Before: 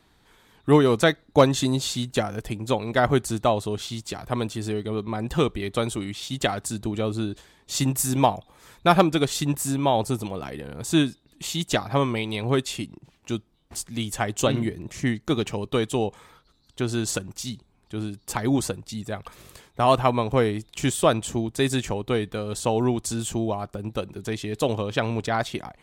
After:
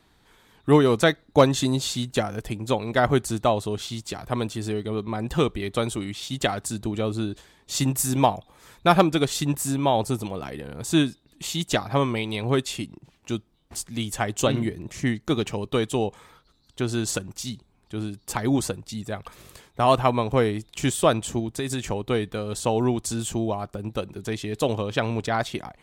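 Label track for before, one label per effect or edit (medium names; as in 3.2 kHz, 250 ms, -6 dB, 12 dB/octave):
21.390000	21.830000	compression, threshold -23 dBFS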